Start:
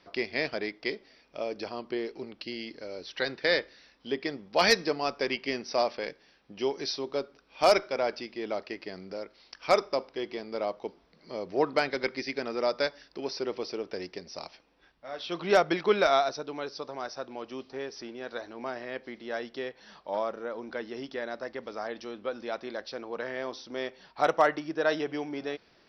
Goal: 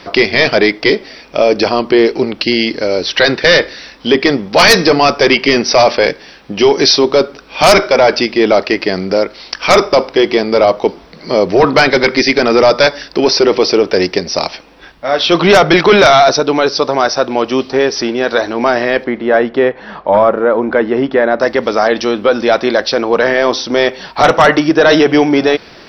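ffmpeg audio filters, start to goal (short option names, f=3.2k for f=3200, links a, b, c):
-filter_complex "[0:a]asettb=1/sr,asplit=3[a][b][c];[a]atrim=end=19.044[d];[b]atrim=start=19.04:end=21.4,asetpts=PTS-STARTPTS,afade=t=in:d=0.004:c=qsin,afade=t=out:st=2.356:d=0.004:c=qsin,lowpass=1.8k[e];[c]atrim=start=21.396[f];[d][e]acrossfade=d=0.004:c1=hsin:c2=qsin[g];[g][f]acrossfade=d=0.004:c1=qsin:c2=hsin,apsyclip=27.5dB,volume=-2dB"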